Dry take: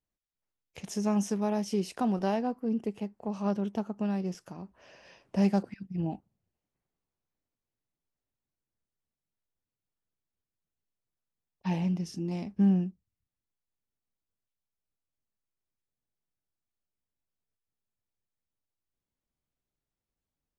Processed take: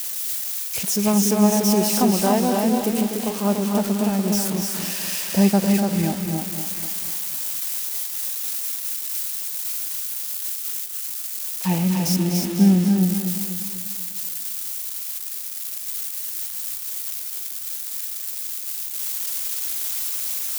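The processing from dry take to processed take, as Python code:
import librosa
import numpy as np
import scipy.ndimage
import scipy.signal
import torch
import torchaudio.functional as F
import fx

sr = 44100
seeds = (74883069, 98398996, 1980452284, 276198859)

p1 = x + 0.5 * 10.0 ** (-26.5 / 20.0) * np.diff(np.sign(x), prepend=np.sign(x[:1]))
p2 = p1 + fx.echo_single(p1, sr, ms=291, db=-4.0, dry=0)
p3 = fx.echo_crushed(p2, sr, ms=247, feedback_pct=55, bits=8, wet_db=-8.0)
y = p3 * 10.0 ** (8.5 / 20.0)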